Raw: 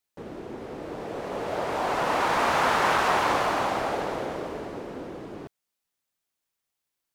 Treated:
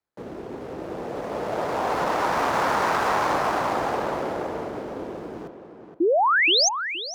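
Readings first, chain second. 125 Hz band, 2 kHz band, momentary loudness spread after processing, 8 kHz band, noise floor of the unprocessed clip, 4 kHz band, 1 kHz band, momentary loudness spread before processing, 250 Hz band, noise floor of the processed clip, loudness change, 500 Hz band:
+1.5 dB, +4.0 dB, 18 LU, +10.5 dB, -84 dBFS, +10.0 dB, +2.5 dB, 17 LU, +3.5 dB, -45 dBFS, +3.0 dB, +4.0 dB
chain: median filter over 15 samples; in parallel at +1 dB: peak limiter -19.5 dBFS, peak gain reduction 7 dB; on the sum: frequency shift +18 Hz; painted sound rise, 6.00–6.69 s, 310–6700 Hz -15 dBFS; tape echo 471 ms, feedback 24%, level -7 dB, low-pass 2.3 kHz; trim -4 dB

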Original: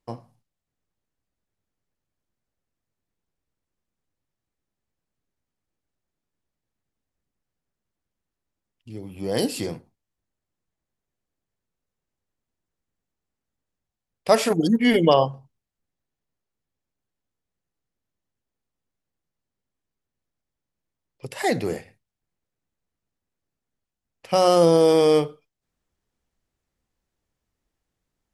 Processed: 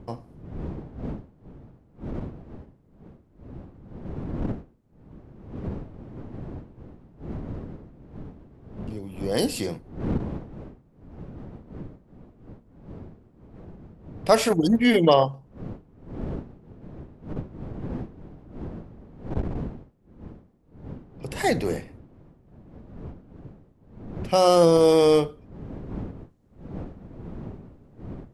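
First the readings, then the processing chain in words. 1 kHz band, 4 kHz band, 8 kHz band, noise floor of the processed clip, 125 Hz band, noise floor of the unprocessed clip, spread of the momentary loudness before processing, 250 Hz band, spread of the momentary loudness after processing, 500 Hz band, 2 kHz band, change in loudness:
-0.5 dB, -0.5 dB, -0.5 dB, -58 dBFS, +3.5 dB, -85 dBFS, 19 LU, +0.5 dB, 25 LU, -0.5 dB, -0.5 dB, -5.0 dB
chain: wind noise 240 Hz -36 dBFS; transformer saturation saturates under 300 Hz

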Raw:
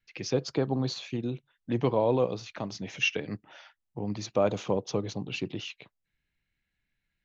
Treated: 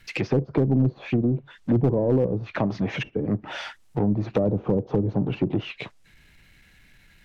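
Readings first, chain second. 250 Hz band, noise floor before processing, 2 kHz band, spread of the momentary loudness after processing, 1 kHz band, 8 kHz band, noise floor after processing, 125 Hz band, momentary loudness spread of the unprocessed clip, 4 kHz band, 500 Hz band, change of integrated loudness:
+9.0 dB, -83 dBFS, +1.0 dB, 9 LU, +0.5 dB, no reading, -56 dBFS, +10.5 dB, 13 LU, -3.5 dB, +3.5 dB, +5.5 dB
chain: power-law waveshaper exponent 0.7; low-pass that closes with the level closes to 360 Hz, closed at -23.5 dBFS; overload inside the chain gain 19.5 dB; trim +6.5 dB

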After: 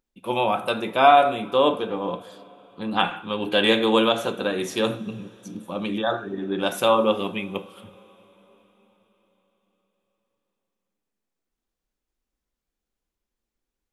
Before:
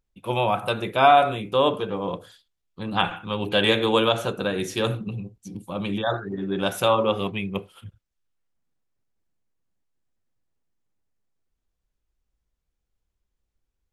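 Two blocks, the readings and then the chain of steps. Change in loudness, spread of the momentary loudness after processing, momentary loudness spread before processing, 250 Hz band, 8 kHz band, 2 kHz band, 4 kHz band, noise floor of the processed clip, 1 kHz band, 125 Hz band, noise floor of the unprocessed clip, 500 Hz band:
+1.0 dB, 16 LU, 15 LU, +1.5 dB, +0.5 dB, +0.5 dB, +0.5 dB, -85 dBFS, +1.0 dB, -6.5 dB, -80 dBFS, +1.0 dB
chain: resonant low shelf 160 Hz -8.5 dB, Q 1.5; two-slope reverb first 0.32 s, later 4.6 s, from -21 dB, DRR 10.5 dB

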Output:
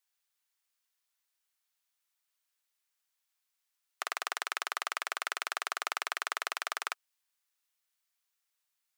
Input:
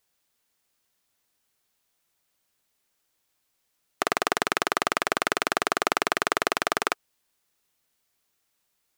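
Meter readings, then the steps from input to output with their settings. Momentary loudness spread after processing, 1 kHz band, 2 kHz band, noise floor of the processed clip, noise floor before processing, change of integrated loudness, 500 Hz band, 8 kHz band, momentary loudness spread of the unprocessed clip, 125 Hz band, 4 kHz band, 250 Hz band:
4 LU, -10.5 dB, -8.5 dB, -84 dBFS, -75 dBFS, -9.5 dB, -18.5 dB, -8.0 dB, 3 LU, under -40 dB, -8.0 dB, -28.0 dB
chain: high-pass 1 kHz 12 dB/octave; trim -8 dB

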